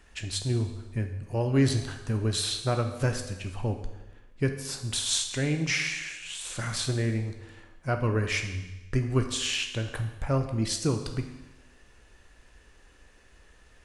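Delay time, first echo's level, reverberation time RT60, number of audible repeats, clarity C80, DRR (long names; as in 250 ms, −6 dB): no echo audible, no echo audible, 1.1 s, no echo audible, 10.0 dB, 5.0 dB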